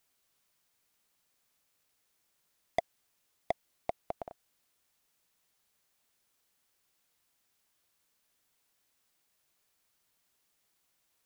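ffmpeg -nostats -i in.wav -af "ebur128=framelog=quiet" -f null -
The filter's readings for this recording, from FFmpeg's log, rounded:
Integrated loudness:
  I:         -40.8 LUFS
  Threshold: -51.1 LUFS
Loudness range:
  LRA:         9.6 LU
  Threshold: -65.6 LUFS
  LRA low:   -53.5 LUFS
  LRA high:  -43.8 LUFS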